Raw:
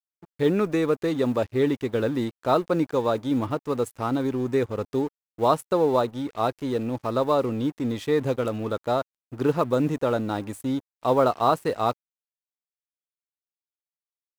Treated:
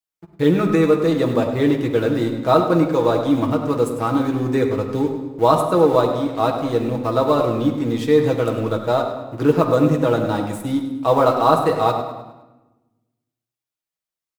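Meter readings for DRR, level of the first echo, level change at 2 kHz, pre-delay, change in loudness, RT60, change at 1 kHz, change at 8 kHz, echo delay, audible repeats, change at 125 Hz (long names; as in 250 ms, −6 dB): 0.5 dB, −11.0 dB, +6.0 dB, 6 ms, +6.5 dB, 1.1 s, +6.0 dB, can't be measured, 102 ms, 3, +8.0 dB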